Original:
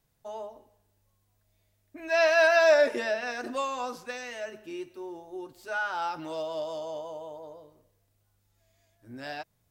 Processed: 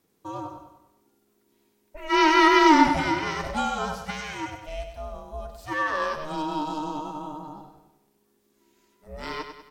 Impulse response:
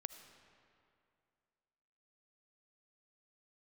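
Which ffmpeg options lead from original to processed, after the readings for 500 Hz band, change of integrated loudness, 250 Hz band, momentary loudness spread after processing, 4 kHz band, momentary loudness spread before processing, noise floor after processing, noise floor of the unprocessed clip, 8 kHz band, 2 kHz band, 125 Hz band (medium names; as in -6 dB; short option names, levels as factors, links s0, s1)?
-3.5 dB, +4.0 dB, +15.5 dB, 22 LU, +7.5 dB, 22 LU, -69 dBFS, -73 dBFS, no reading, +2.0 dB, +16.0 dB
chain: -af "aeval=exprs='val(0)*sin(2*PI*310*n/s)':c=same,aecho=1:1:97|194|291|388|485|582:0.376|0.184|0.0902|0.0442|0.0217|0.0106,volume=2.11"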